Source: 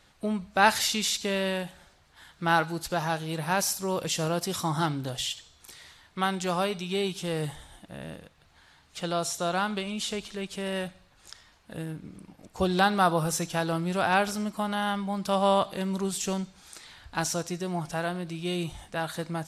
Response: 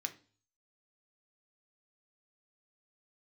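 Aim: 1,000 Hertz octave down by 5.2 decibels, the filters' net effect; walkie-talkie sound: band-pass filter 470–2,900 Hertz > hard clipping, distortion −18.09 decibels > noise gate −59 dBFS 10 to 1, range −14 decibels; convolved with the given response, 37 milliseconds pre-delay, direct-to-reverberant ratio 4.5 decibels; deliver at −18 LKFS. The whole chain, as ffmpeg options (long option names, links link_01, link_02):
-filter_complex "[0:a]equalizer=frequency=1000:width_type=o:gain=-6.5,asplit=2[link_01][link_02];[1:a]atrim=start_sample=2205,adelay=37[link_03];[link_02][link_03]afir=irnorm=-1:irlink=0,volume=-4dB[link_04];[link_01][link_04]amix=inputs=2:normalize=0,highpass=470,lowpass=2900,asoftclip=type=hard:threshold=-18.5dB,agate=range=-14dB:threshold=-59dB:ratio=10,volume=15.5dB"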